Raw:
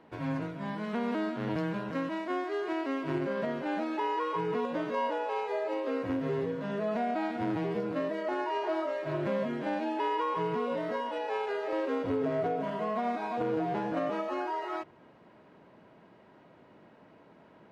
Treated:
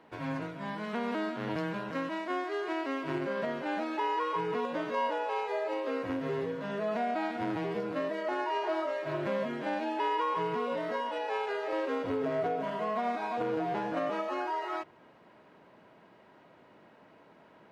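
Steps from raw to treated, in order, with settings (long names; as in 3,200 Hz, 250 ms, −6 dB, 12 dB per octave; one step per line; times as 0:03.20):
low-shelf EQ 450 Hz −6.5 dB
level +2 dB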